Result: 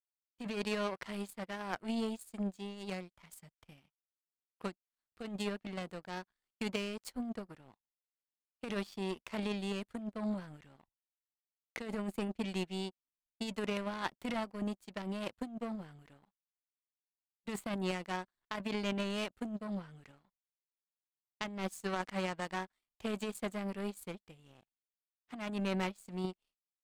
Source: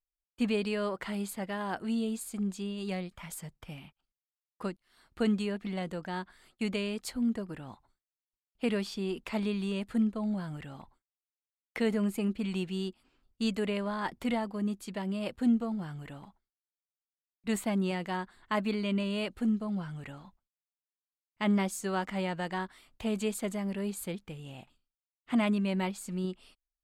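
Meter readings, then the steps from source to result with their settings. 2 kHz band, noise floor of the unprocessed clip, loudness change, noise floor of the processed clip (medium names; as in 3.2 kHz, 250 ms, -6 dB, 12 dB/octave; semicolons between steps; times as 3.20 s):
-3.5 dB, under -85 dBFS, -6.5 dB, under -85 dBFS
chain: power-law waveshaper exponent 2; compressor with a negative ratio -39 dBFS, ratio -1; trim +3 dB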